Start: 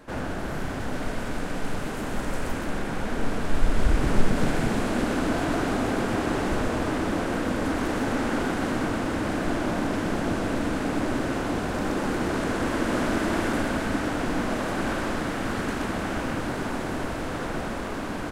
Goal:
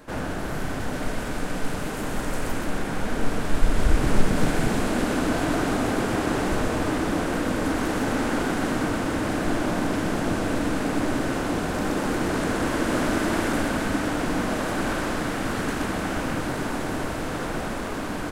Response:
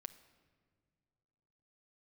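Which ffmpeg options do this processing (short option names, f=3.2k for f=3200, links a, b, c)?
-filter_complex "[0:a]asplit=2[a][b];[1:a]atrim=start_sample=2205,highshelf=f=6.6k:g=8[c];[b][c]afir=irnorm=-1:irlink=0,volume=10dB[d];[a][d]amix=inputs=2:normalize=0,volume=-7.5dB"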